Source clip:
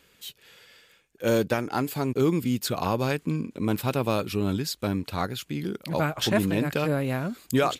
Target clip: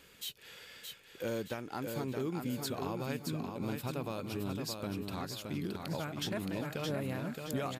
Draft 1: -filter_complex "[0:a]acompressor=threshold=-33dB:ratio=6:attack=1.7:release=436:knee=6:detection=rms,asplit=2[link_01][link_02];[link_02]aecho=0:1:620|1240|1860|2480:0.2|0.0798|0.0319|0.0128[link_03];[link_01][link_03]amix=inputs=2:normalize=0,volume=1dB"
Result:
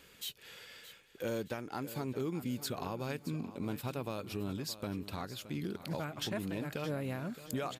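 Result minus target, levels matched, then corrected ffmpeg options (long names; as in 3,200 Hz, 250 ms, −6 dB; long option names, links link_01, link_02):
echo-to-direct −9 dB
-filter_complex "[0:a]acompressor=threshold=-33dB:ratio=6:attack=1.7:release=436:knee=6:detection=rms,asplit=2[link_01][link_02];[link_02]aecho=0:1:620|1240|1860|2480|3100:0.562|0.225|0.09|0.036|0.0144[link_03];[link_01][link_03]amix=inputs=2:normalize=0,volume=1dB"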